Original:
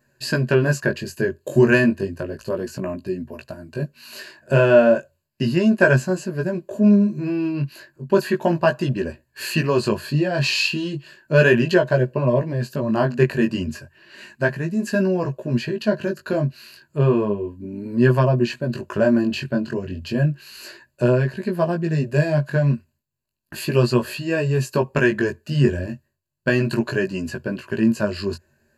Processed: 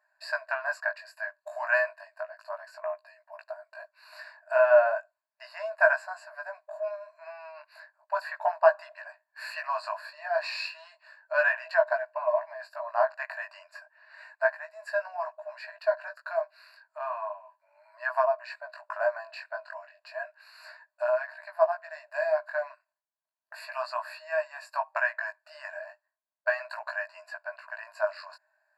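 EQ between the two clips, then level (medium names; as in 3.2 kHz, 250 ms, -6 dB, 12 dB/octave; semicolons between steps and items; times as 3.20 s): boxcar filter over 14 samples; brick-wall FIR high-pass 600 Hz; 0.0 dB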